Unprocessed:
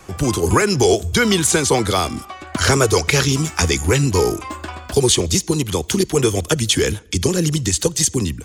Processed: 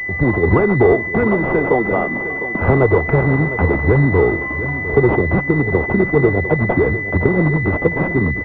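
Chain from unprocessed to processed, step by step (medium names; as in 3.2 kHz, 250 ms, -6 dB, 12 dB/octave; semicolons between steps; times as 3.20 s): 0.92–2.62 s: Bessel high-pass 210 Hz, order 8; feedback delay 705 ms, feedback 46%, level -12.5 dB; class-D stage that switches slowly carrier 2 kHz; trim +3 dB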